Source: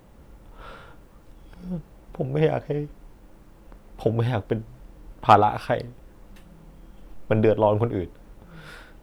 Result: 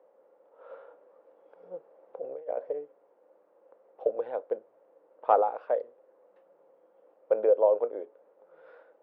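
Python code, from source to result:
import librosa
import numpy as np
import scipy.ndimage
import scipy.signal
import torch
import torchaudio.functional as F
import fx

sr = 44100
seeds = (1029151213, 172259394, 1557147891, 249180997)

y = scipy.signal.sosfilt(scipy.signal.butter(2, 1300.0, 'lowpass', fs=sr, output='sos'), x)
y = fx.over_compress(y, sr, threshold_db=-27.0, ratio=-0.5, at=(0.7, 2.71))
y = fx.ladder_highpass(y, sr, hz=470.0, resonance_pct=70)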